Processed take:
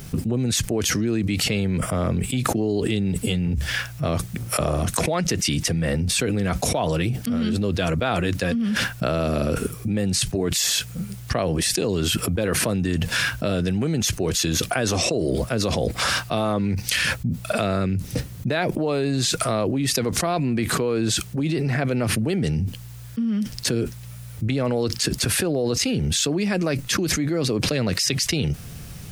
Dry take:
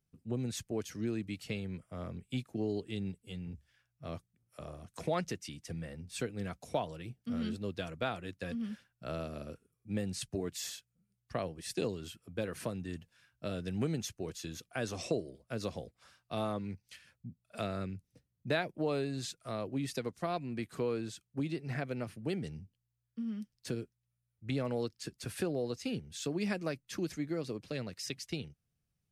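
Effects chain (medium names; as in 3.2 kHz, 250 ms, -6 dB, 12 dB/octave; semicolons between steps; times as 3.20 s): level flattener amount 100%; trim +6 dB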